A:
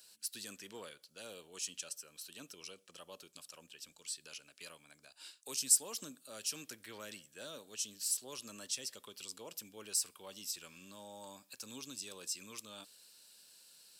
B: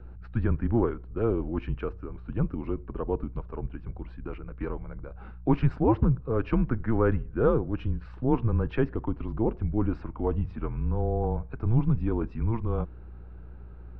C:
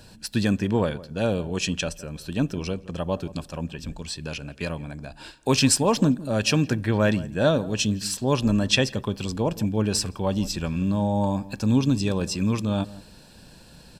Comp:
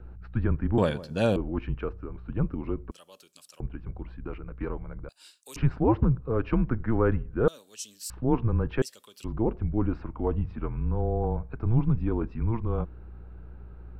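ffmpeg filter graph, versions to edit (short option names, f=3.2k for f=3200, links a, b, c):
-filter_complex "[0:a]asplit=4[a][b][c][d];[1:a]asplit=6[e][f][g][h][i][j];[e]atrim=end=0.782[k];[2:a]atrim=start=0.778:end=1.362[l];[f]atrim=start=1.358:end=2.912[m];[a]atrim=start=2.908:end=3.602[n];[g]atrim=start=3.598:end=5.092[o];[b]atrim=start=5.088:end=5.562[p];[h]atrim=start=5.558:end=7.482[q];[c]atrim=start=7.478:end=8.102[r];[i]atrim=start=8.098:end=8.822[s];[d]atrim=start=8.818:end=9.242[t];[j]atrim=start=9.238[u];[k][l]acrossfade=d=0.004:c1=hsin:c2=hsin[v];[v][m]acrossfade=d=0.004:c1=hsin:c2=hsin[w];[w][n]acrossfade=d=0.004:c1=hsin:c2=hsin[x];[x][o]acrossfade=d=0.004:c1=hsin:c2=hsin[y];[y][p]acrossfade=d=0.004:c1=hsin:c2=hsin[z];[z][q]acrossfade=d=0.004:c1=hsin:c2=hsin[aa];[aa][r]acrossfade=d=0.004:c1=hsin:c2=hsin[ab];[ab][s]acrossfade=d=0.004:c1=hsin:c2=hsin[ac];[ac][t]acrossfade=d=0.004:c1=hsin:c2=hsin[ad];[ad][u]acrossfade=d=0.004:c1=hsin:c2=hsin"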